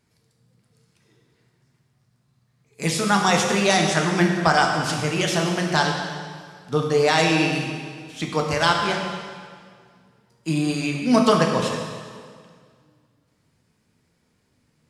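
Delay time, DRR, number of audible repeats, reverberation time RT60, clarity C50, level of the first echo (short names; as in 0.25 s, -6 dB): none, 0.5 dB, none, 1.9 s, 3.5 dB, none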